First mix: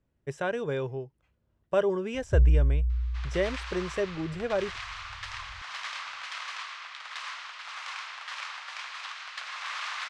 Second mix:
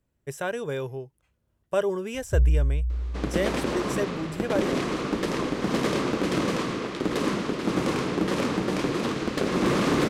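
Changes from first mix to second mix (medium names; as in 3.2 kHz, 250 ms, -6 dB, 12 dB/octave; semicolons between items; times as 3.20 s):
second sound: remove Bessel high-pass 1.6 kHz, order 8; master: remove distance through air 110 m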